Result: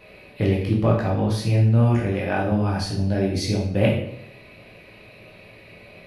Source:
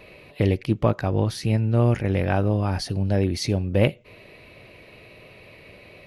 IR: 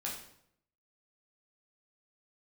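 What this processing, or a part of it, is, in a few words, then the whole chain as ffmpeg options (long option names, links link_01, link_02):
bathroom: -filter_complex "[1:a]atrim=start_sample=2205[link_01];[0:a][link_01]afir=irnorm=-1:irlink=0,asettb=1/sr,asplit=3[link_02][link_03][link_04];[link_02]atrim=end=2.124[link_05];[link_03]atrim=start=2.12:end=2.52,asetpts=PTS-STARTPTS,afade=type=in:duration=0.004:curve=qsin,afade=type=out:start_time=0.396:duration=0.004:curve=qsin,lowshelf=frequency=130:gain=-10.5[link_06];[link_04]atrim=start=2.516[link_07];[link_05][link_06]acrossfade=duration=0.004:curve1=hsin:curve2=qsin[link_08];[link_08][link_07]acrossfade=duration=0.004:curve1=qsin:curve2=hsin"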